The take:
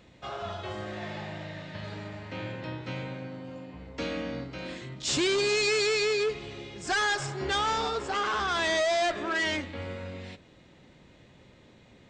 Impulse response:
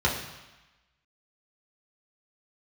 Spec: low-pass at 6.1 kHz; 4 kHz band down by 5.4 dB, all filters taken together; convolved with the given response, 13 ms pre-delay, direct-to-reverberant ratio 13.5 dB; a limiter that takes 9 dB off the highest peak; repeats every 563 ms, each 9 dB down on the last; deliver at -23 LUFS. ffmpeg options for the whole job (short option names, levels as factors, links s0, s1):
-filter_complex "[0:a]lowpass=6100,equalizer=f=4000:t=o:g=-6,alimiter=level_in=1.88:limit=0.0631:level=0:latency=1,volume=0.531,aecho=1:1:563|1126|1689|2252:0.355|0.124|0.0435|0.0152,asplit=2[s0][s1];[1:a]atrim=start_sample=2205,adelay=13[s2];[s1][s2]afir=irnorm=-1:irlink=0,volume=0.0447[s3];[s0][s3]amix=inputs=2:normalize=0,volume=4.47"